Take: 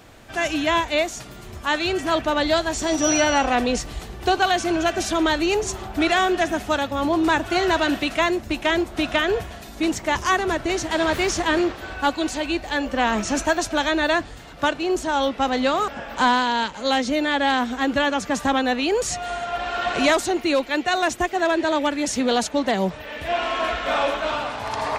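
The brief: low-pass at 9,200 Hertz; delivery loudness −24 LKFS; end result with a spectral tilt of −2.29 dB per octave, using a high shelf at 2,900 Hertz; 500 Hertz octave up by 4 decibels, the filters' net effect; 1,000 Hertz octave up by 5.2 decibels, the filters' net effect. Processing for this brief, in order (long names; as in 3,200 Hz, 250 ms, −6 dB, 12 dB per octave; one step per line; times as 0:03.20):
low-pass filter 9,200 Hz
parametric band 500 Hz +3.5 dB
parametric band 1,000 Hz +4.5 dB
high-shelf EQ 2,900 Hz +7.5 dB
level −6 dB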